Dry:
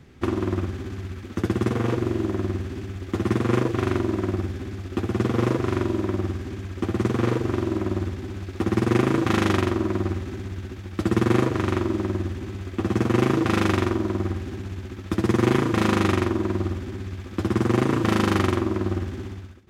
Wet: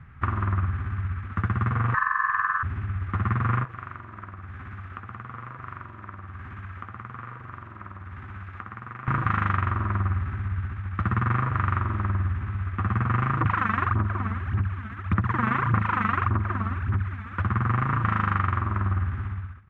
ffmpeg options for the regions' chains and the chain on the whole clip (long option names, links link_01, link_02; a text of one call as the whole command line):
ffmpeg -i in.wav -filter_complex "[0:a]asettb=1/sr,asplit=3[link_01][link_02][link_03];[link_01]atrim=end=1.944[link_04];[link_02]atrim=start=1.94:end=2.63,asetpts=PTS-STARTPTS,afade=type=in:duration=0.004:curve=qsin,afade=type=out:start_time=0.686:duration=0.004:curve=qsin,highpass=200,lowpass=6500,lowshelf=frequency=330:gain=10,aeval=exprs='val(0)*sin(2*PI*1400*n/s)':channel_layout=same[link_05];[link_03]atrim=start=2.626[link_06];[link_04][link_05]acrossfade=duration=0.004:curve1=hsin:curve2=qsin[link_07];[link_07][link_06]acrossfade=duration=0.004:curve1=qsin:curve2=hsin,asettb=1/sr,asplit=3[link_08][link_09][link_10];[link_08]atrim=end=3.644[link_11];[link_09]atrim=start=3.64:end=9.08,asetpts=PTS-STARTPTS,afade=type=in:duration=0.004:curve=qsin,afade=type=out:start_time=5.436:duration=0.004:curve=qsin,acompressor=threshold=-30dB:ratio=16:attack=3.2:release=140:knee=1:detection=peak,lowshelf=frequency=180:gain=-10.5[link_12];[link_10]atrim=start=9.076[link_13];[link_11][link_12]acrossfade=duration=0.004:curve1=hsin:curve2=qsin[link_14];[link_14][link_13]acrossfade=duration=0.004:curve1=qsin:curve2=hsin,asettb=1/sr,asplit=3[link_15][link_16][link_17];[link_15]atrim=end=13.414[link_18];[link_16]atrim=start=13.41:end=17.42,asetpts=PTS-STARTPTS,afade=type=in:duration=0.004:curve=qsin,afade=type=out:start_time=4.006:duration=0.004:curve=qsin,highpass=83,aphaser=in_gain=1:out_gain=1:delay=4.6:decay=0.7:speed=1.7:type=sinusoidal,bandreject=frequency=4800:width=26[link_19];[link_17]atrim=start=17.416[link_20];[link_18][link_19]acrossfade=duration=0.004:curve1=hsin:curve2=qsin[link_21];[link_21][link_20]acrossfade=duration=0.004:curve1=qsin:curve2=hsin,acrossover=split=9400[link_22][link_23];[link_23]acompressor=threshold=-59dB:ratio=4:attack=1:release=60[link_24];[link_22][link_24]amix=inputs=2:normalize=0,firequalizer=gain_entry='entry(120,0);entry(330,-22);entry(1200,5);entry(4600,-30)':delay=0.05:min_phase=1,acompressor=threshold=-25dB:ratio=6,volume=5dB" out.wav